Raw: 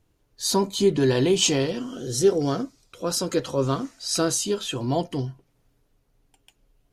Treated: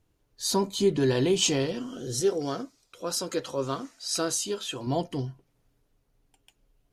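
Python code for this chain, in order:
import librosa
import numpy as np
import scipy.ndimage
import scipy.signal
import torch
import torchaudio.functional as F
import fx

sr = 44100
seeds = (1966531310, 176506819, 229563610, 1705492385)

y = fx.low_shelf(x, sr, hz=230.0, db=-10.0, at=(2.2, 4.87))
y = y * 10.0 ** (-3.5 / 20.0)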